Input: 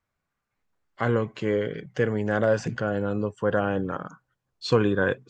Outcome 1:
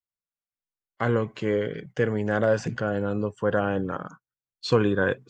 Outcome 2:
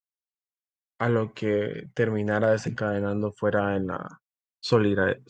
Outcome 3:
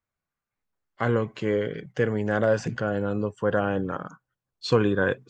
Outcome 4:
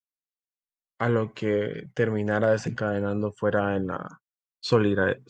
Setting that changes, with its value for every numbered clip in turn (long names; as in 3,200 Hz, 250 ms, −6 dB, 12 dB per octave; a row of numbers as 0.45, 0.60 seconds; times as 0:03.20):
noise gate, range: −24, −56, −7, −39 decibels